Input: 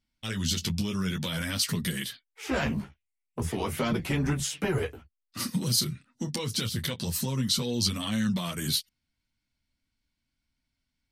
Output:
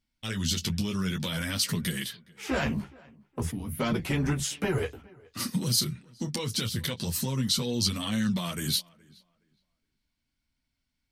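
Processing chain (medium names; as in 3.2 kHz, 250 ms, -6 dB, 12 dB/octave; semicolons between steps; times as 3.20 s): time-frequency box 3.51–3.80 s, 310–9300 Hz -17 dB; tape echo 418 ms, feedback 24%, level -23.5 dB, low-pass 2.4 kHz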